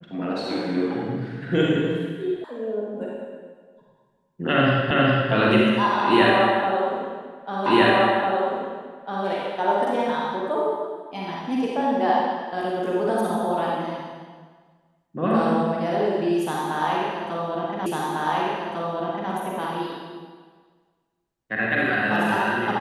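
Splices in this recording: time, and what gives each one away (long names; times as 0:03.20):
0:02.44: cut off before it has died away
0:04.91: the same again, the last 0.41 s
0:07.66: the same again, the last 1.6 s
0:17.86: the same again, the last 1.45 s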